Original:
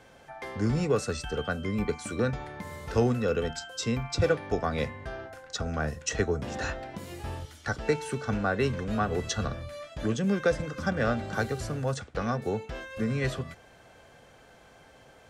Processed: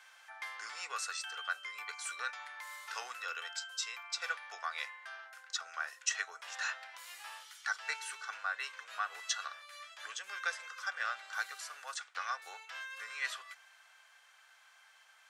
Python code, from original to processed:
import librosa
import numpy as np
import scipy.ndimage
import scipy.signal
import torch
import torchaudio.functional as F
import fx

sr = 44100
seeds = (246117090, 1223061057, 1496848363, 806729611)

y = scipy.signal.sosfilt(scipy.signal.butter(4, 1100.0, 'highpass', fs=sr, output='sos'), x)
y = fx.rider(y, sr, range_db=10, speed_s=2.0)
y = y * 10.0 ** (-2.5 / 20.0)